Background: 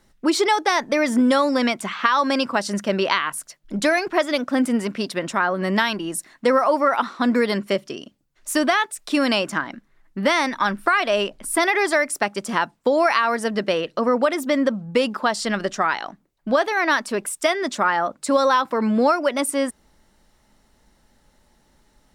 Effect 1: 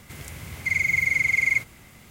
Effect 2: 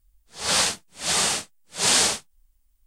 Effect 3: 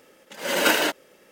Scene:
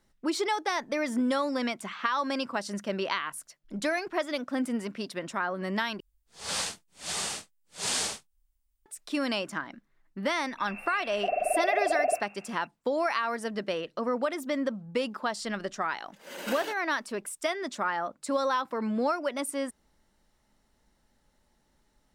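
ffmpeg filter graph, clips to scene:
ffmpeg -i bed.wav -i cue0.wav -i cue1.wav -i cue2.wav -filter_complex "[0:a]volume=-10dB[link_01];[1:a]lowpass=frequency=2400:width_type=q:width=0.5098,lowpass=frequency=2400:width_type=q:width=0.6013,lowpass=frequency=2400:width_type=q:width=0.9,lowpass=frequency=2400:width_type=q:width=2.563,afreqshift=-2800[link_02];[link_01]asplit=2[link_03][link_04];[link_03]atrim=end=6.004[link_05];[2:a]atrim=end=2.86,asetpts=PTS-STARTPTS,volume=-10.5dB[link_06];[link_04]atrim=start=8.856[link_07];[link_02]atrim=end=2.1,asetpts=PTS-STARTPTS,volume=-4.5dB,afade=type=in:duration=0.004:curve=hsin,afade=type=out:start_time=2.096:duration=0.004:curve=hsin,adelay=10570[link_08];[3:a]atrim=end=1.31,asetpts=PTS-STARTPTS,volume=-17dB,afade=type=in:duration=0.004:curve=hsin,afade=type=out:start_time=1.306:duration=0.004:curve=hsin,adelay=15820[link_09];[link_05][link_06]acrossfade=duration=0.004:curve1=hsin:curve2=hsin[link_10];[link_10][link_07]acrossfade=duration=0.004:curve1=hsin:curve2=hsin[link_11];[link_11][link_08][link_09]amix=inputs=3:normalize=0" out.wav

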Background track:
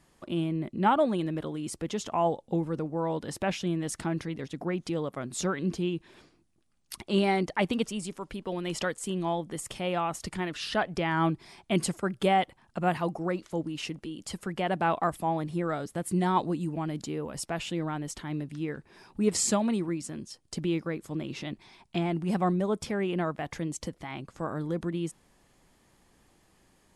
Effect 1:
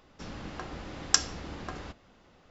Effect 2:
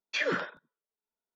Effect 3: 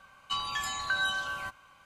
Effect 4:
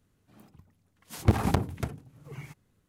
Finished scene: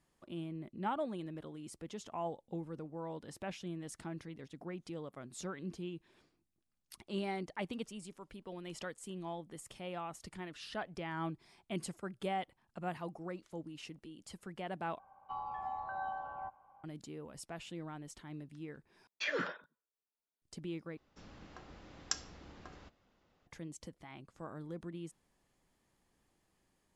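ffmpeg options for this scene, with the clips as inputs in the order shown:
ffmpeg -i bed.wav -i cue0.wav -i cue1.wav -i cue2.wav -filter_complex "[0:a]volume=-13dB[link_01];[3:a]lowpass=frequency=800:width_type=q:width=10[link_02];[link_01]asplit=4[link_03][link_04][link_05][link_06];[link_03]atrim=end=14.994[link_07];[link_02]atrim=end=1.85,asetpts=PTS-STARTPTS,volume=-10.5dB[link_08];[link_04]atrim=start=16.836:end=19.074[link_09];[2:a]atrim=end=1.35,asetpts=PTS-STARTPTS,volume=-6.5dB[link_10];[link_05]atrim=start=20.416:end=20.974[link_11];[1:a]atrim=end=2.5,asetpts=PTS-STARTPTS,volume=-13.5dB[link_12];[link_06]atrim=start=23.466[link_13];[link_07][link_08]acrossfade=duration=0.004:curve1=hsin:curve2=hsin[link_14];[link_14][link_09]acrossfade=duration=0.004:curve1=hsin:curve2=hsin[link_15];[link_15][link_10]acrossfade=duration=0.004:curve1=hsin:curve2=hsin[link_16];[link_16][link_11]acrossfade=duration=0.004:curve1=hsin:curve2=hsin[link_17];[link_17][link_12]acrossfade=duration=0.004:curve1=hsin:curve2=hsin[link_18];[link_18][link_13]acrossfade=duration=0.004:curve1=hsin:curve2=hsin" out.wav

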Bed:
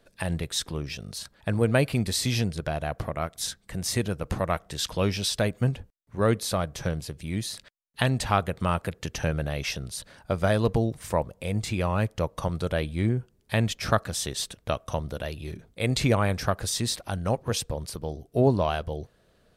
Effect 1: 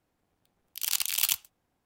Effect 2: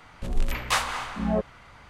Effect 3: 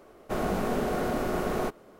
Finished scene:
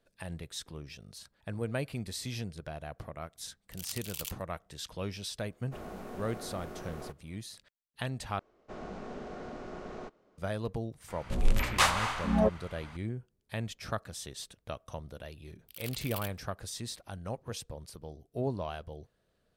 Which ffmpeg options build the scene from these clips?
ffmpeg -i bed.wav -i cue0.wav -i cue1.wav -i cue2.wav -filter_complex "[1:a]asplit=2[link_01][link_02];[3:a]asplit=2[link_03][link_04];[0:a]volume=-12dB[link_05];[link_04]lowpass=frequency=6600:width=0.5412,lowpass=frequency=6600:width=1.3066[link_06];[link_02]equalizer=frequency=6700:width=1.4:gain=-13[link_07];[link_05]asplit=2[link_08][link_09];[link_08]atrim=end=8.394[link_10];[link_06]atrim=end=1.99,asetpts=PTS-STARTPTS,volume=-14dB[link_11];[link_09]atrim=start=10.376[link_12];[link_01]atrim=end=1.85,asetpts=PTS-STARTPTS,volume=-14dB,afade=type=in:duration=0.004:curve=hsin,afade=type=out:start_time=1.846:duration=0.004:curve=hsin,adelay=2960[link_13];[link_03]atrim=end=1.99,asetpts=PTS-STARTPTS,volume=-15dB,afade=type=in:duration=0.004:curve=hsin,afade=type=out:start_time=1.986:duration=0.004:curve=hsin,adelay=5420[link_14];[2:a]atrim=end=1.89,asetpts=PTS-STARTPTS,volume=-0.5dB,afade=type=in:duration=0.004:curve=hsin,afade=type=out:start_time=1.886:duration=0.004:curve=hsin,adelay=11080[link_15];[link_07]atrim=end=1.85,asetpts=PTS-STARTPTS,volume=-13dB,afade=type=in:duration=0.004:curve=hsin,afade=type=out:start_time=1.846:duration=0.004:curve=hsin,adelay=14930[link_16];[link_10][link_11]acrossfade=duration=0.004:curve1=hsin:curve2=hsin[link_17];[link_17][link_12]acrossfade=duration=0.004:curve1=hsin:curve2=hsin[link_18];[link_18][link_13][link_14][link_15][link_16]amix=inputs=5:normalize=0" out.wav

